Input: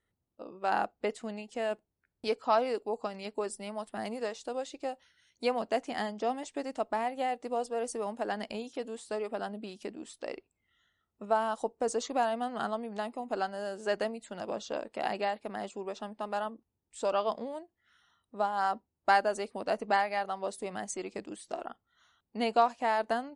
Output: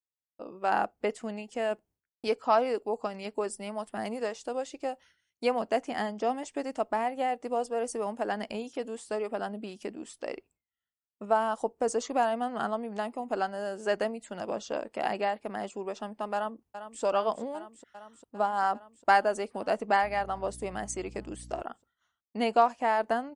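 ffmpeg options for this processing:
-filter_complex "[0:a]asplit=2[a][b];[b]afade=t=in:st=16.34:d=0.01,afade=t=out:st=17.03:d=0.01,aecho=0:1:400|800|1200|1600|2000|2400|2800|3200|3600|4000|4400|4800:0.298538|0.238831|0.191064|0.152852|0.122281|0.097825|0.07826|0.062608|0.0500864|0.0400691|0.0320553|0.0256442[c];[a][c]amix=inputs=2:normalize=0,asettb=1/sr,asplit=3[d][e][f];[d]atrim=end=20.034[g];[e]atrim=start=20.03:end=21.62,asetpts=PTS-STARTPTS,afade=t=in:d=0.004:c=qsin,afade=t=out:st=1.586:d=0.004:c=qsin,aeval=exprs='val(0)+0.00355*(sin(2*PI*60*n/s)+sin(2*PI*2*60*n/s)/2+sin(2*PI*3*60*n/s)/3+sin(2*PI*4*60*n/s)/4+sin(2*PI*5*60*n/s)/5)':c=same[h];[f]atrim=start=21.616[i];[g][h]acrossfade=d=0.004:c1=hsin:c2=qsin[j];[j][i]acrossfade=d=0.004:c1=qsin:c2=hsin,equalizer=f=3.9k:t=o:w=0.29:g=-7,agate=range=-33dB:threshold=-58dB:ratio=3:detection=peak,adynamicequalizer=threshold=0.00794:dfrequency=2300:dqfactor=0.7:tfrequency=2300:tqfactor=0.7:attack=5:release=100:ratio=0.375:range=2:mode=cutabove:tftype=highshelf,volume=2.5dB"

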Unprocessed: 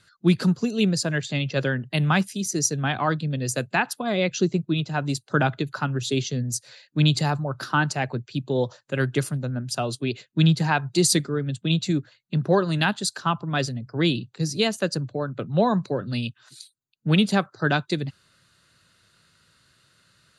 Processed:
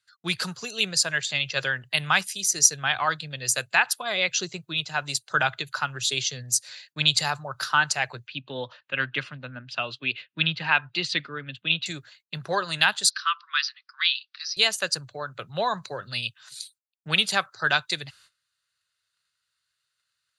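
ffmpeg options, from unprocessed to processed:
-filter_complex "[0:a]asettb=1/sr,asplit=3[a][b][c];[a]atrim=end=8.274[d];[b]atrim=start=8.27:end=11.86,asetpts=PTS-STARTPTS,afade=t=in:d=0.004:c=qsin,afade=t=out:st=3.586:d=0.004:c=qsin,highpass=120,equalizer=f=260:t=q:w=4:g=9,equalizer=f=400:t=q:w=4:g=-4,equalizer=f=760:t=q:w=4:g=-5,equalizer=f=2.7k:t=q:w=4:g=5,lowpass=f=3.4k:w=0.5412,lowpass=f=3.4k:w=1.3066[e];[c]atrim=start=11.856[f];[d][e]acrossfade=d=0.004:c1=hsin:c2=qsin[g];[g][f]acrossfade=d=0.004:c1=qsin:c2=hsin,asettb=1/sr,asplit=3[h][i][j];[h]atrim=end=13.104[k];[i]atrim=start=13.1:end=14.57,asetpts=PTS-STARTPTS,afade=t=in:d=0.004:c=qsin,afade=t=out:st=1.466:d=0.004:c=qsin,asuperpass=centerf=2500:order=20:qfactor=0.56[l];[j]atrim=start=14.566[m];[k][l]acrossfade=d=0.004:c1=hsin:c2=qsin[n];[n][m]acrossfade=d=0.004:c1=qsin:c2=hsin,tiltshelf=f=760:g=-6.5,agate=range=-22dB:threshold=-53dB:ratio=16:detection=peak,equalizer=f=250:t=o:w=1.5:g=-14.5"

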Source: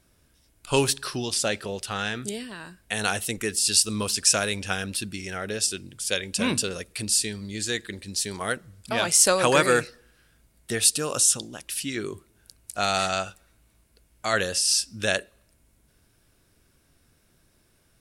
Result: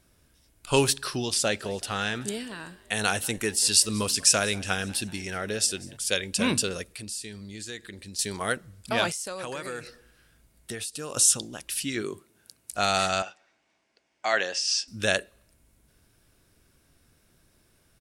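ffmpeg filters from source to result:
-filter_complex "[0:a]asplit=3[a][b][c];[a]afade=t=out:st=1.59:d=0.02[d];[b]asplit=5[e][f][g][h][i];[f]adelay=190,afreqshift=66,volume=-22dB[j];[g]adelay=380,afreqshift=132,volume=-26.6dB[k];[h]adelay=570,afreqshift=198,volume=-31.2dB[l];[i]adelay=760,afreqshift=264,volume=-35.7dB[m];[e][j][k][l][m]amix=inputs=5:normalize=0,afade=t=in:st=1.59:d=0.02,afade=t=out:st=5.96:d=0.02[n];[c]afade=t=in:st=5.96:d=0.02[o];[d][n][o]amix=inputs=3:normalize=0,asettb=1/sr,asplit=3[p][q][r];[p]atrim=end=6.844[s];[q]atrim=start=6.84:end=8.19,asetpts=PTS-STARTPTS,afade=t=in:d=0.004:c=qsin,afade=t=out:st=1.346:d=0.004:c=qsin,acompressor=threshold=-42dB:ratio=2:attack=3.2:release=140:knee=1:detection=peak[t];[r]atrim=start=8.186[u];[s][t]acrossfade=d=0.004:c1=hsin:c2=qsin[v];[v][u]acrossfade=d=0.004:c1=qsin:c2=hsin,asettb=1/sr,asplit=3[w][x][y];[w]atrim=end=9.104[z];[x]atrim=start=9.1:end=11.17,asetpts=PTS-STARTPTS,afade=t=in:d=0.004:c=qsin,afade=t=out:st=2.066:d=0.004:c=qsin,acompressor=threshold=-31dB:ratio=10:attack=3.2:release=140:knee=1:detection=peak[aa];[y]atrim=start=11.166[ab];[z][aa]acrossfade=d=0.004:c1=hsin:c2=qsin[ac];[ac][ab]acrossfade=d=0.004:c1=qsin:c2=hsin,asettb=1/sr,asplit=3[ad][ae][af];[ad]atrim=end=12.024[ag];[ae]atrim=start=12.02:end=12.72,asetpts=PTS-STARTPTS,afade=t=in:d=0.004:c=qsin,afade=t=out:st=0.696:d=0.004:c=qsin,highpass=150[ah];[af]atrim=start=12.716[ai];[ag][ah]acrossfade=d=0.004:c1=hsin:c2=qsin[aj];[aj][ai]acrossfade=d=0.004:c1=qsin:c2=hsin,asettb=1/sr,asplit=3[ak][al][am];[ak]atrim=end=13.224[an];[al]atrim=start=13.22:end=14.88,asetpts=PTS-STARTPTS,afade=t=in:d=0.004:c=qsin,afade=t=out:st=1.656:d=0.004:c=qsin,highpass=380,equalizer=f=470:t=q:w=4:g=-5,equalizer=f=770:t=q:w=4:g=5,equalizer=f=1.3k:t=q:w=4:g=-4,equalizer=f=2k:t=q:w=4:g=3,equalizer=f=4k:t=q:w=4:g=-5,lowpass=f=6k:w=0.5412,lowpass=f=6k:w=1.3066[ao];[am]atrim=start=14.876[ap];[an][ao]acrossfade=d=0.004:c1=hsin:c2=qsin[aq];[aq][ap]acrossfade=d=0.004:c1=qsin:c2=hsin"

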